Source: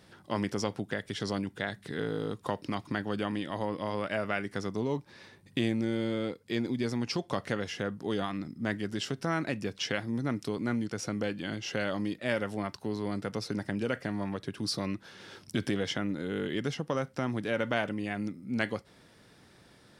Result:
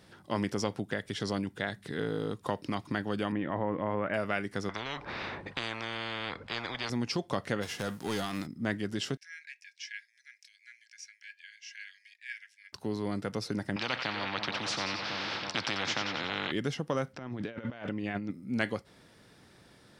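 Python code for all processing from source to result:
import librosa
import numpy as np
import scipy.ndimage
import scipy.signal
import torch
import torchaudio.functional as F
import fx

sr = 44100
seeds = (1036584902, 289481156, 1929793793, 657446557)

y = fx.chain(x, sr, fx.lowpass(hz=2200.0, slope=24),
    fx.env_flatten(amount_pct=50), at=(3.32, 4.14))
y = fx.chain(y, sr, fx.lowpass(hz=1800.0, slope=12),
    fx.spectral_comp(ratio=10.0), at=(4.69, 6.9))
y = fx.envelope_flatten(y, sr, power=0.6, at=(7.61, 8.45), fade=0.02)
y = fx.clip_hard(y, sr, threshold_db=-26.0, at=(7.61, 8.45), fade=0.02)
y = fx.chain(y, sr, fx.cheby_ripple_highpass(hz=1600.0, ripple_db=9),
    fx.high_shelf(hz=4500.0, db=-11.0), at=(9.17, 12.73))
y = fx.chain(y, sr, fx.cabinet(low_hz=170.0, low_slope=12, high_hz=3700.0, hz=(410.0, 840.0, 1300.0, 2400.0), db=(-10, 10, 9, 7)),
    fx.echo_split(split_hz=980.0, low_ms=325, high_ms=91, feedback_pct=52, wet_db=-12),
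    fx.spectral_comp(ratio=4.0), at=(13.76, 16.52))
y = fx.chain(y, sr, fx.lowpass(hz=4400.0, slope=12),
    fx.over_compress(threshold_db=-36.0, ratio=-0.5), at=(17.13, 18.31))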